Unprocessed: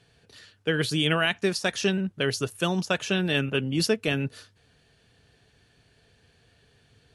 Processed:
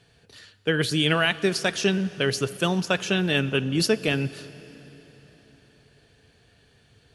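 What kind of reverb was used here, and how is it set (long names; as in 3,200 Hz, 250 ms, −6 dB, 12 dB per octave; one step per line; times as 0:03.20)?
dense smooth reverb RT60 4.5 s, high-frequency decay 0.8×, DRR 16 dB
level +2 dB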